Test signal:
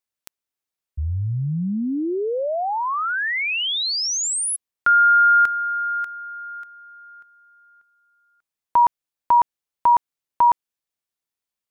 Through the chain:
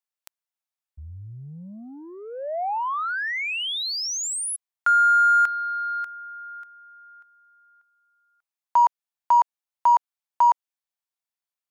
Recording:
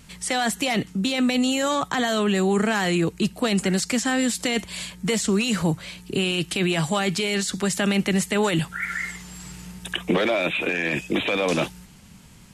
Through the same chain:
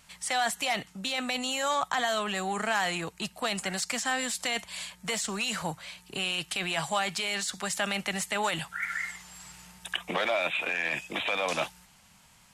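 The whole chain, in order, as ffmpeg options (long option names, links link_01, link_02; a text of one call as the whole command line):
ffmpeg -i in.wav -af "aeval=exprs='0.316*(cos(1*acos(clip(val(0)/0.316,-1,1)))-cos(1*PI/2))+0.00708*(cos(7*acos(clip(val(0)/0.316,-1,1)))-cos(7*PI/2))':channel_layout=same,lowshelf=frequency=520:width_type=q:width=1.5:gain=-10,volume=-4dB" out.wav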